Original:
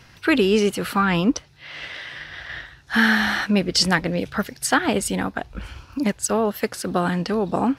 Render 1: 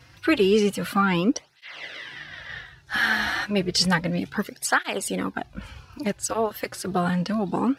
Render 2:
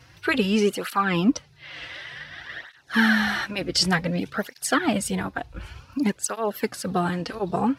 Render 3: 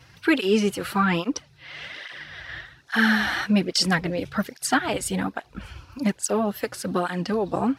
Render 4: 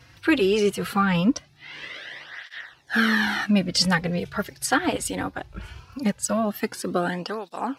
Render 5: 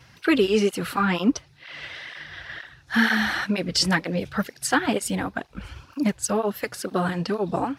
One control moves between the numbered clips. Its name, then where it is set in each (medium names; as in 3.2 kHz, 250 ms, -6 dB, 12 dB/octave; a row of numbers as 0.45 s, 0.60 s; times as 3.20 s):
cancelling through-zero flanger, nulls at: 0.31 Hz, 0.55 Hz, 1.2 Hz, 0.2 Hz, 2.1 Hz